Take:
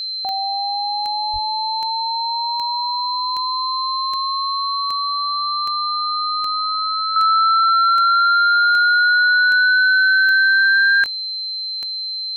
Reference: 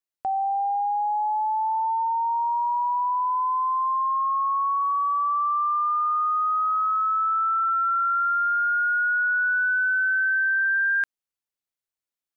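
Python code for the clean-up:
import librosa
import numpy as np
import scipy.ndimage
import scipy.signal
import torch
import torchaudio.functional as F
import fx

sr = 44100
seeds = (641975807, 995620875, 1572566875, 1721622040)

y = fx.fix_declick_ar(x, sr, threshold=10.0)
y = fx.notch(y, sr, hz=4100.0, q=30.0)
y = fx.fix_deplosive(y, sr, at_s=(1.32,))
y = fx.fix_level(y, sr, at_s=7.16, step_db=-8.0)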